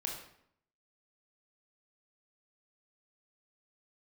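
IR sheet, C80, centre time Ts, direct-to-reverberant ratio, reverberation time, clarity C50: 7.5 dB, 37 ms, -0.5 dB, 0.70 s, 4.0 dB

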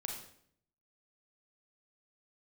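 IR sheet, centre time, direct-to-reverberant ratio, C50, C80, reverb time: 35 ms, 0.5 dB, 4.0 dB, 7.5 dB, 0.65 s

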